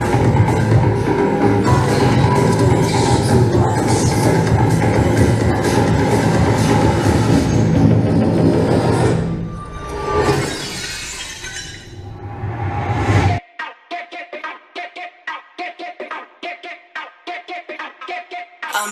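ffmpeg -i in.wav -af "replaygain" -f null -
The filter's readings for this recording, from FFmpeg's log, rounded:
track_gain = -1.0 dB
track_peak = 0.484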